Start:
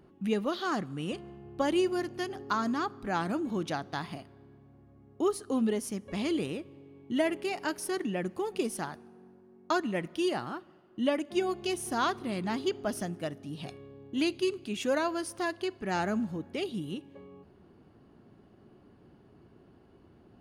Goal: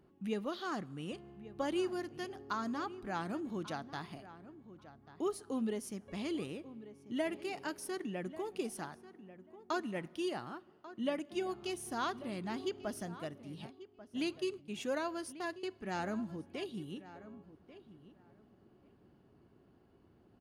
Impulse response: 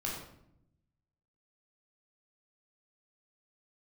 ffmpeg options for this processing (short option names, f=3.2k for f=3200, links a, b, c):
-filter_complex "[0:a]asplit=3[a][b][c];[a]afade=t=out:st=13.65:d=0.02[d];[b]agate=range=-23dB:threshold=-38dB:ratio=16:detection=peak,afade=t=in:st=13.65:d=0.02,afade=t=out:st=15.72:d=0.02[e];[c]afade=t=in:st=15.72:d=0.02[f];[d][e][f]amix=inputs=3:normalize=0,asplit=2[g][h];[h]adelay=1140,lowpass=f=2.4k:p=1,volume=-15dB,asplit=2[i][j];[j]adelay=1140,lowpass=f=2.4k:p=1,volume=0.17[k];[g][i][k]amix=inputs=3:normalize=0,volume=-7.5dB"